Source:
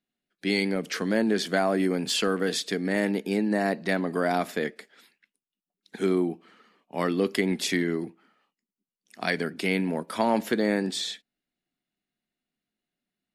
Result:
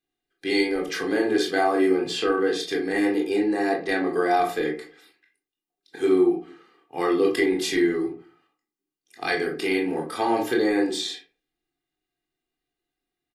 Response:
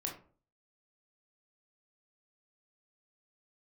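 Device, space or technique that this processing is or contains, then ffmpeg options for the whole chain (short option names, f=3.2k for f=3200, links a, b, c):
microphone above a desk: -filter_complex "[0:a]asettb=1/sr,asplit=3[a][b][c];[a]atrim=end=1.944[d];[b]atrim=start=1.94:end=2.6,asetpts=PTS-STARTPTS,afade=t=in:d=0.004:c=qsin,afade=t=out:st=0.656:d=0.004:c=qsin,aemphasis=mode=reproduction:type=50kf[e];[c]atrim=start=2.596[f];[d][e]acrossfade=d=0.004:c1=hsin:c2=qsin[g];[g][f]acrossfade=d=0.004:c1=qsin:c2=hsin,asettb=1/sr,asplit=3[h][i][j];[h]atrim=end=3.154[k];[i]atrim=start=3.15:end=4.43,asetpts=PTS-STARTPTS,afade=t=in:d=0.004:c=qsin,afade=t=out:st=1.276:d=0.004:c=qsin,lowpass=11k[l];[j]atrim=start=4.426[m];[k][l]acrossfade=d=0.004:c1=hsin:c2=qsin[n];[n][m]acrossfade=d=0.004:c1=qsin:c2=hsin,aecho=1:1:2.5:0.82[o];[1:a]atrim=start_sample=2205[p];[o][p]afir=irnorm=-1:irlink=0"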